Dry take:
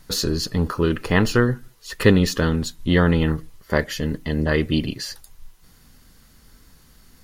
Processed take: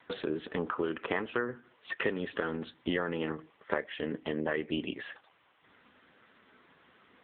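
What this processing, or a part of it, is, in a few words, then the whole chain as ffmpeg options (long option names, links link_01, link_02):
voicemail: -af "highpass=380,lowpass=3300,acompressor=threshold=-32dB:ratio=6,volume=4dB" -ar 8000 -c:a libopencore_amrnb -b:a 6700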